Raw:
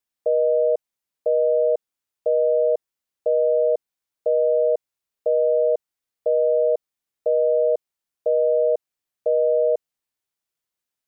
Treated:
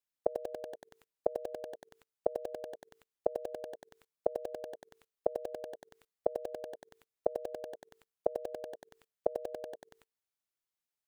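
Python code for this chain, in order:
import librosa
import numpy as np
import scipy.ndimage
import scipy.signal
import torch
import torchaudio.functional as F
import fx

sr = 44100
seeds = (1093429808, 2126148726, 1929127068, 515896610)

y = fx.hum_notches(x, sr, base_hz=50, count=9)
y = fx.level_steps(y, sr, step_db=21)
y = fx.gate_flip(y, sr, shuts_db=-26.0, range_db=-36)
y = fx.echo_crushed(y, sr, ms=94, feedback_pct=80, bits=9, wet_db=-7.0)
y = F.gain(torch.from_numpy(y), 11.5).numpy()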